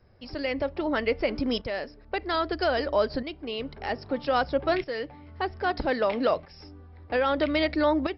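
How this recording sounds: tremolo saw up 0.62 Hz, depth 70%; MP2

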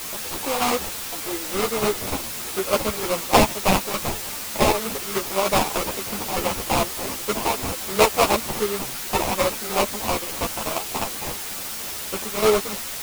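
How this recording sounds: aliases and images of a low sample rate 1700 Hz, jitter 20%; chopped level 3.3 Hz, depth 60%, duty 55%; a quantiser's noise floor 6-bit, dither triangular; a shimmering, thickened sound

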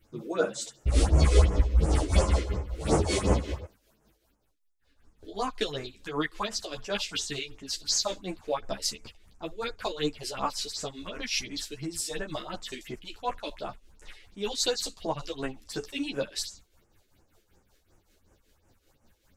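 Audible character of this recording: phasing stages 4, 2.8 Hz, lowest notch 130–4000 Hz; tremolo triangle 5.2 Hz, depth 70%; a shimmering, thickened sound

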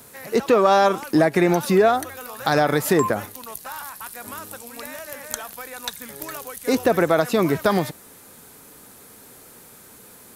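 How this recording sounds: noise floor -47 dBFS; spectral tilt -5.0 dB/oct

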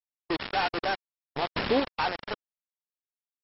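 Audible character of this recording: aliases and images of a low sample rate 7000 Hz, jitter 0%; chopped level 0.64 Hz, depth 60%, duty 15%; a quantiser's noise floor 6-bit, dither none; MP2

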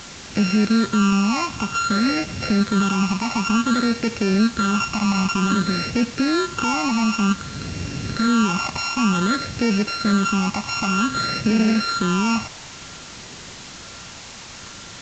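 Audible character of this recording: a buzz of ramps at a fixed pitch in blocks of 32 samples; phasing stages 8, 0.54 Hz, lowest notch 470–1100 Hz; a quantiser's noise floor 6-bit, dither triangular; µ-law

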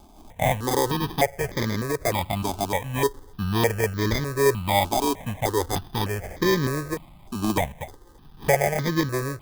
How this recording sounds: aliases and images of a low sample rate 1400 Hz, jitter 0%; notches that jump at a steady rate 3.3 Hz 510–2700 Hz

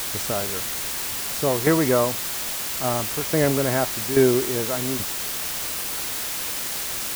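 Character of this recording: tremolo saw down 1.2 Hz, depth 70%; a quantiser's noise floor 6-bit, dither triangular

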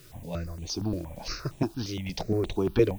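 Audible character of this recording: tremolo triangle 0.91 Hz, depth 30%; a quantiser's noise floor 10-bit, dither triangular; notches that jump at a steady rate 8.6 Hz 220–5000 Hz

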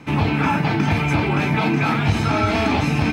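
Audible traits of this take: noise floor -23 dBFS; spectral tilt -5.5 dB/oct

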